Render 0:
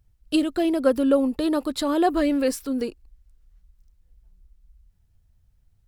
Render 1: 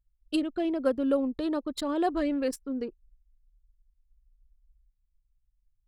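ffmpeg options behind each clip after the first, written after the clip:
ffmpeg -i in.wav -af "anlmdn=25.1,volume=-6.5dB" out.wav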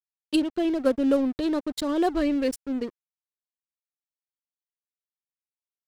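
ffmpeg -i in.wav -af "aeval=exprs='sgn(val(0))*max(abs(val(0))-0.00631,0)':channel_layout=same,equalizer=frequency=990:width_type=o:width=2.3:gain=-5,volume=7dB" out.wav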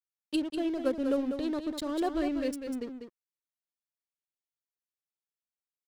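ffmpeg -i in.wav -af "aecho=1:1:196:0.422,volume=-7dB" out.wav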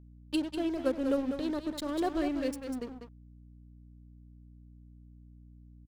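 ffmpeg -i in.wav -filter_complex "[0:a]asplit=2[link_01][link_02];[link_02]adelay=99.13,volume=-21dB,highshelf=frequency=4000:gain=-2.23[link_03];[link_01][link_03]amix=inputs=2:normalize=0,aeval=exprs='sgn(val(0))*max(abs(val(0))-0.00376,0)':channel_layout=same,aeval=exprs='val(0)+0.00251*(sin(2*PI*60*n/s)+sin(2*PI*2*60*n/s)/2+sin(2*PI*3*60*n/s)/3+sin(2*PI*4*60*n/s)/4+sin(2*PI*5*60*n/s)/5)':channel_layout=same" out.wav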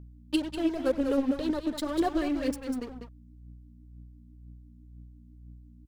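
ffmpeg -i in.wav -af "aphaser=in_gain=1:out_gain=1:delay=4.9:decay=0.47:speed=2:type=triangular,volume=2dB" out.wav

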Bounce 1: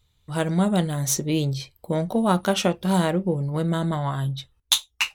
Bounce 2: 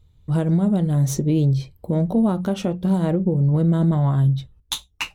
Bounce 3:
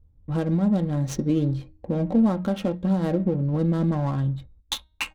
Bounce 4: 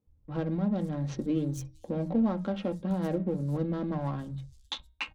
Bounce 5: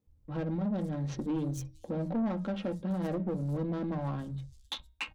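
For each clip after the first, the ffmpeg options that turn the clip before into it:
ffmpeg -i in.wav -af "tiltshelf=frequency=630:gain=9,alimiter=limit=-15dB:level=0:latency=1:release=267,bandreject=frequency=60:width_type=h:width=6,bandreject=frequency=120:width_type=h:width=6,bandreject=frequency=180:width_type=h:width=6,volume=4dB" out.wav
ffmpeg -i in.wav -af "bandreject=frequency=312.4:width_type=h:width=4,bandreject=frequency=624.8:width_type=h:width=4,bandreject=frequency=937.2:width_type=h:width=4,bandreject=frequency=1249.6:width_type=h:width=4,bandreject=frequency=1562:width_type=h:width=4,bandreject=frequency=1874.4:width_type=h:width=4,bandreject=frequency=2186.8:width_type=h:width=4,bandreject=frequency=2499.2:width_type=h:width=4,bandreject=frequency=2811.6:width_type=h:width=4,bandreject=frequency=3124:width_type=h:width=4,bandreject=frequency=3436.4:width_type=h:width=4,bandreject=frequency=3748.8:width_type=h:width=4,bandreject=frequency=4061.2:width_type=h:width=4,bandreject=frequency=4373.6:width_type=h:width=4,bandreject=frequency=4686:width_type=h:width=4,bandreject=frequency=4998.4:width_type=h:width=4,bandreject=frequency=5310.8:width_type=h:width=4,bandreject=frequency=5623.2:width_type=h:width=4,adynamicsmooth=sensitivity=7.5:basefreq=770,aecho=1:1:3.7:0.44,volume=-2.5dB" out.wav
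ffmpeg -i in.wav -filter_complex "[0:a]acrossover=split=150|5400[link_01][link_02][link_03];[link_01]adelay=70[link_04];[link_03]adelay=460[link_05];[link_04][link_02][link_05]amix=inputs=3:normalize=0,volume=-5.5dB" out.wav
ffmpeg -i in.wav -af "asoftclip=type=tanh:threshold=-26.5dB" out.wav

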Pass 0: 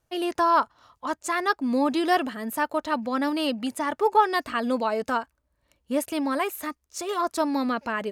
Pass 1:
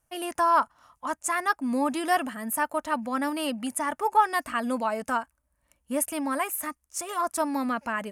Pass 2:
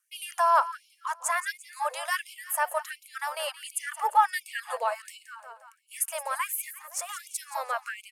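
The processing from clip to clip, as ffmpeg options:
ffmpeg -i in.wav -af "equalizer=frequency=100:width_type=o:width=0.67:gain=-6,equalizer=frequency=400:width_type=o:width=0.67:gain=-10,equalizer=frequency=4000:width_type=o:width=0.67:gain=-10,equalizer=frequency=10000:width_type=o:width=0.67:gain=10" out.wav
ffmpeg -i in.wav -af "aecho=1:1:173|346|519|692|865:0.224|0.114|0.0582|0.0297|0.0151,afftfilt=real='re*gte(b*sr/1024,420*pow(2200/420,0.5+0.5*sin(2*PI*1.4*pts/sr)))':imag='im*gte(b*sr/1024,420*pow(2200/420,0.5+0.5*sin(2*PI*1.4*pts/sr)))':win_size=1024:overlap=0.75" out.wav

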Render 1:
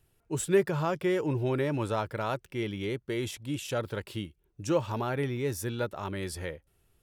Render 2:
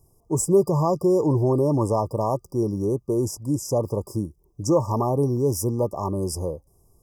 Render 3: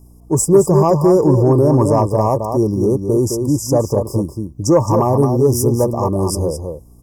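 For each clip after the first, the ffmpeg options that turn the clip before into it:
ffmpeg -i in.wav -filter_complex "[0:a]afftfilt=real='re*(1-between(b*sr/4096,1200,4800))':imag='im*(1-between(b*sr/4096,1200,4800))':win_size=4096:overlap=0.75,asplit=2[link_01][link_02];[link_02]alimiter=limit=-23.5dB:level=0:latency=1:release=40,volume=1dB[link_03];[link_01][link_03]amix=inputs=2:normalize=0,volume=3dB" out.wav
ffmpeg -i in.wav -filter_complex "[0:a]asplit=2[link_01][link_02];[link_02]adelay=215.7,volume=-6dB,highshelf=frequency=4000:gain=-4.85[link_03];[link_01][link_03]amix=inputs=2:normalize=0,aeval=exprs='val(0)+0.00282*(sin(2*PI*60*n/s)+sin(2*PI*2*60*n/s)/2+sin(2*PI*3*60*n/s)/3+sin(2*PI*4*60*n/s)/4+sin(2*PI*5*60*n/s)/5)':channel_layout=same,acontrast=50,volume=2dB" out.wav

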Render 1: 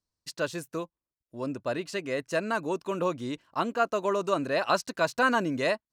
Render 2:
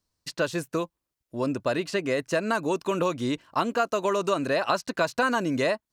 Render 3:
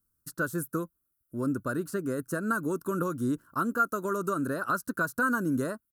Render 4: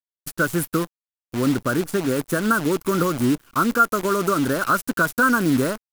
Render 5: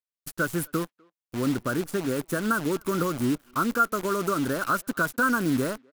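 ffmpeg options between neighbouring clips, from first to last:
ffmpeg -i in.wav -filter_complex "[0:a]acrossover=split=1700|3800[link_01][link_02][link_03];[link_01]acompressor=threshold=-31dB:ratio=4[link_04];[link_02]acompressor=threshold=-44dB:ratio=4[link_05];[link_03]acompressor=threshold=-49dB:ratio=4[link_06];[link_04][link_05][link_06]amix=inputs=3:normalize=0,volume=8dB" out.wav
ffmpeg -i in.wav -af "firequalizer=gain_entry='entry(270,0);entry(780,-18);entry(1400,5);entry(2100,-26);entry(11000,11)':delay=0.05:min_phase=1" out.wav
ffmpeg -i in.wav -af "acrusher=bits=7:dc=4:mix=0:aa=0.000001,volume=9dB" out.wav
ffmpeg -i in.wav -filter_complex "[0:a]asplit=2[link_01][link_02];[link_02]adelay=250,highpass=300,lowpass=3400,asoftclip=type=hard:threshold=-15dB,volume=-29dB[link_03];[link_01][link_03]amix=inputs=2:normalize=0,volume=-5.5dB" out.wav

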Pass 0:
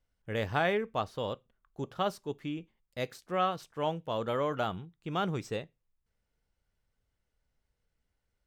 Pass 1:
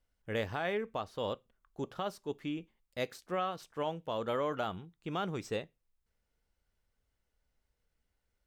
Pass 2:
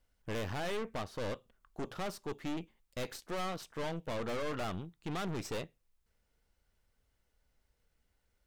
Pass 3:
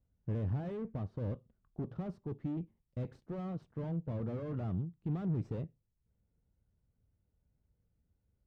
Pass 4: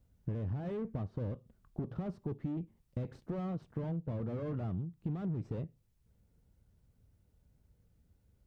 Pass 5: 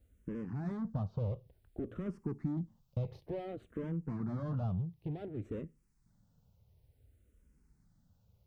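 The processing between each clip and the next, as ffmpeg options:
ffmpeg -i in.wav -af "equalizer=frequency=130:width_type=o:width=0.73:gain=-5,alimiter=limit=-24dB:level=0:latency=1:release=281" out.wav
ffmpeg -i in.wav -af "aeval=exprs='(tanh(141*val(0)+0.7)-tanh(0.7))/141':channel_layout=same,volume=8dB" out.wav
ffmpeg -i in.wav -af "bandpass=frequency=120:width_type=q:width=1.3:csg=0,volume=9dB" out.wav
ffmpeg -i in.wav -af "acompressor=threshold=-44dB:ratio=4,volume=8.5dB" out.wav
ffmpeg -i in.wav -filter_complex "[0:a]asplit=2[link_01][link_02];[link_02]afreqshift=-0.56[link_03];[link_01][link_03]amix=inputs=2:normalize=1,volume=3.5dB" out.wav

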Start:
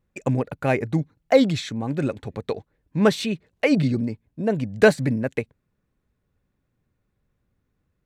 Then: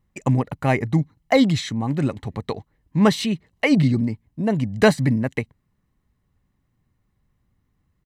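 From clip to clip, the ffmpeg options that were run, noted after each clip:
ffmpeg -i in.wav -af "aecho=1:1:1:0.45,volume=2dB" out.wav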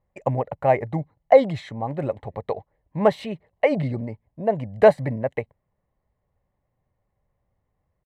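ffmpeg -i in.wav -af "firequalizer=gain_entry='entry(100,0);entry(260,-5);entry(560,14);entry(1300,-1);entry(2000,1);entry(2800,-4);entry(5900,-14);entry(9400,-10)':delay=0.05:min_phase=1,volume=-6dB" out.wav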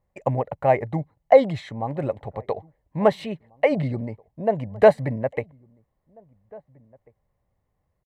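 ffmpeg -i in.wav -filter_complex "[0:a]asplit=2[link_01][link_02];[link_02]adelay=1691,volume=-27dB,highshelf=frequency=4000:gain=-38[link_03];[link_01][link_03]amix=inputs=2:normalize=0" out.wav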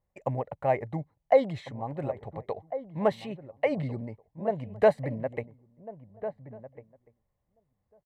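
ffmpeg -i in.wav -filter_complex "[0:a]asplit=2[link_01][link_02];[link_02]adelay=1399,volume=-13dB,highshelf=frequency=4000:gain=-31.5[link_03];[link_01][link_03]amix=inputs=2:normalize=0,volume=-7dB" out.wav

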